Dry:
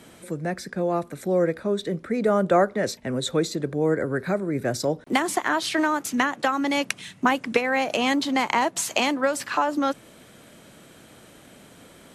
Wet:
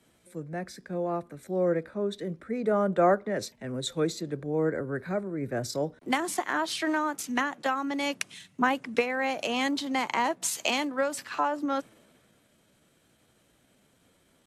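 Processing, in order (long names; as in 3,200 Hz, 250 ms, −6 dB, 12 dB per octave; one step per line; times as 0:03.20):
tempo change 0.84×
multiband upward and downward expander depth 40%
level −5.5 dB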